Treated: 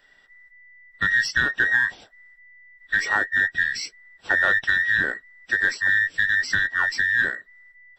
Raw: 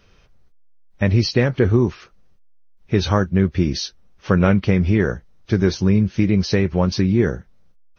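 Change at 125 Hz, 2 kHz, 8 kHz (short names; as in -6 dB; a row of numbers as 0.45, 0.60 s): -25.5 dB, +13.0 dB, n/a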